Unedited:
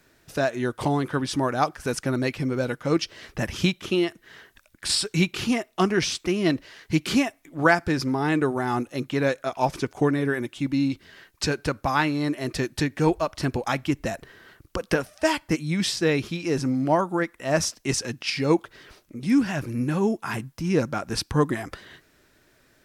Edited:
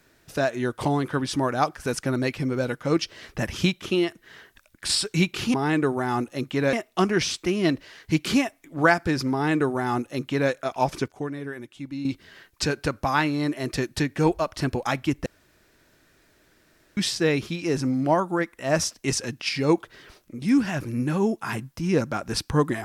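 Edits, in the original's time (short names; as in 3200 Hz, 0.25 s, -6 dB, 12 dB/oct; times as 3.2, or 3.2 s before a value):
8.13–9.32 copy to 5.54
9.89–10.86 gain -9.5 dB
14.07–15.78 room tone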